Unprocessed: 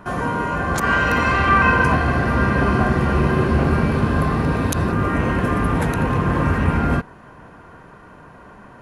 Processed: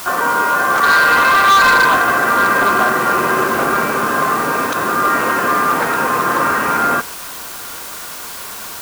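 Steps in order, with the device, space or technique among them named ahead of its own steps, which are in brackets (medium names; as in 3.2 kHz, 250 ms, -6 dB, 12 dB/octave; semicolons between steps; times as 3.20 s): drive-through speaker (band-pass 410–3800 Hz; peaking EQ 1.3 kHz +8 dB 0.57 oct; hard clipper -13 dBFS, distortion -11 dB; white noise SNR 15 dB); trim +5.5 dB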